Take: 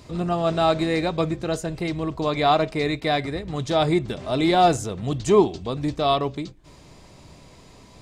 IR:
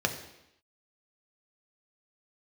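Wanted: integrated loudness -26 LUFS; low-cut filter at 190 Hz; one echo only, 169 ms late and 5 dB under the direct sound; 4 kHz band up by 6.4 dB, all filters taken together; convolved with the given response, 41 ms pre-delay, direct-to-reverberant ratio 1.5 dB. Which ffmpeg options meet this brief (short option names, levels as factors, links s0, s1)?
-filter_complex "[0:a]highpass=190,equalizer=f=4000:t=o:g=7,aecho=1:1:169:0.562,asplit=2[s0][s1];[1:a]atrim=start_sample=2205,adelay=41[s2];[s1][s2]afir=irnorm=-1:irlink=0,volume=0.282[s3];[s0][s3]amix=inputs=2:normalize=0,volume=0.447"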